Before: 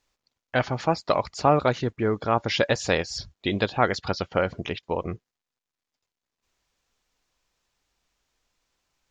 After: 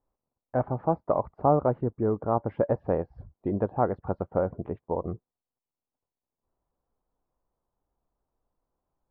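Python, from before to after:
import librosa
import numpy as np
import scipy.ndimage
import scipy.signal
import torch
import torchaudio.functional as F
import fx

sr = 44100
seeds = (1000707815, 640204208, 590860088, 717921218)

y = scipy.signal.sosfilt(scipy.signal.butter(4, 1000.0, 'lowpass', fs=sr, output='sos'), x)
y = F.gain(torch.from_numpy(y), -1.5).numpy()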